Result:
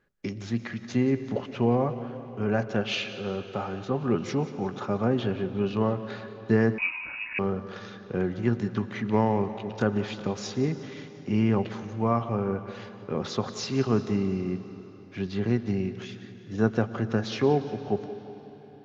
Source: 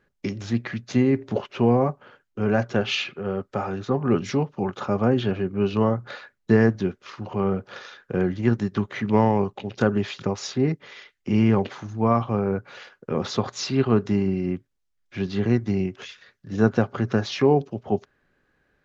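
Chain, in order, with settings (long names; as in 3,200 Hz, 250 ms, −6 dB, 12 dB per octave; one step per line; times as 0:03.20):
echo with a time of its own for lows and highs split 310 Hz, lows 104 ms, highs 179 ms, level −16 dB
comb and all-pass reverb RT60 4.2 s, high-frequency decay 0.85×, pre-delay 75 ms, DRR 13 dB
0:06.78–0:07.39: voice inversion scrambler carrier 2,700 Hz
level −4.5 dB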